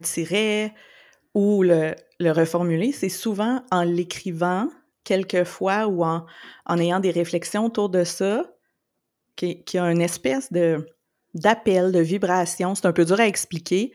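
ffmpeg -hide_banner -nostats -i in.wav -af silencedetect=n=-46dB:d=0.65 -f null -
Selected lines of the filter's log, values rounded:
silence_start: 8.51
silence_end: 9.38 | silence_duration: 0.86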